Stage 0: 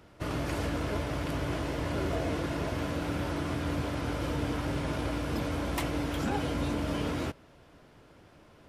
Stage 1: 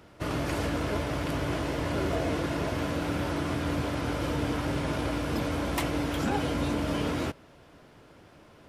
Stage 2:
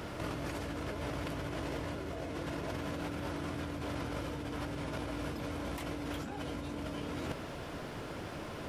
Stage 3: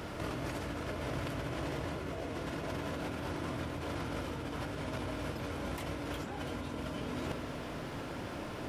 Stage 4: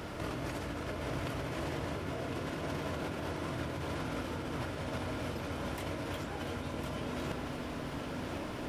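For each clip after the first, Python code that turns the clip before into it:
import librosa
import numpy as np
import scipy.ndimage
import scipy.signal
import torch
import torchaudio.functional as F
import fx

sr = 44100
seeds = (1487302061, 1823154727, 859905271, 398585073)

y1 = fx.low_shelf(x, sr, hz=71.0, db=-5.0)
y1 = F.gain(torch.from_numpy(y1), 3.0).numpy()
y2 = fx.over_compress(y1, sr, threshold_db=-40.0, ratio=-1.0)
y2 = F.gain(torch.from_numpy(y2), 1.5).numpy()
y3 = y2 + 10.0 ** (-13.5 / 20.0) * np.pad(y2, (int(693 * sr / 1000.0), 0))[:len(y2)]
y3 = fx.rev_spring(y3, sr, rt60_s=3.6, pass_ms=(32, 56), chirp_ms=70, drr_db=7.0)
y4 = y3 + 10.0 ** (-6.0 / 20.0) * np.pad(y3, (int(1057 * sr / 1000.0), 0))[:len(y3)]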